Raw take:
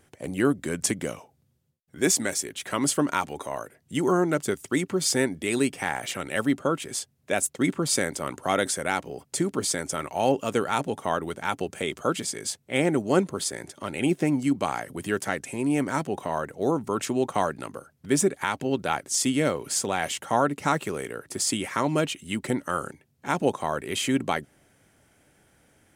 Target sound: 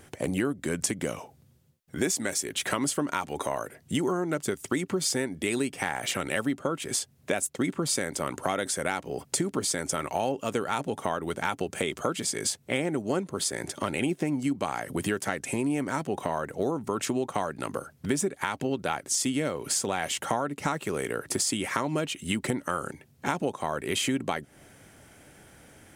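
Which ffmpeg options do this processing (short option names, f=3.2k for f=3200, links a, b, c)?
-af "acompressor=threshold=-34dB:ratio=6,volume=8.5dB"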